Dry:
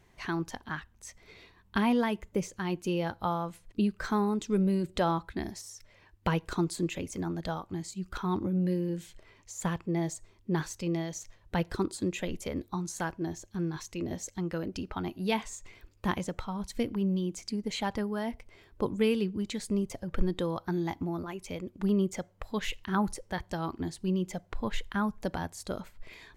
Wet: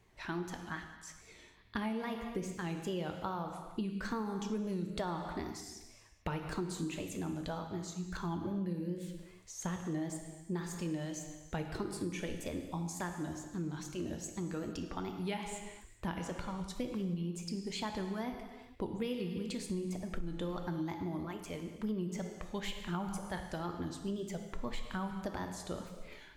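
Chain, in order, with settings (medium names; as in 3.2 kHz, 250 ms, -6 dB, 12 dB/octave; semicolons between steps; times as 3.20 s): wow and flutter 150 cents; gated-style reverb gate 480 ms falling, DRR 5 dB; compression, threshold -28 dBFS, peak gain reduction 10.5 dB; trim -5 dB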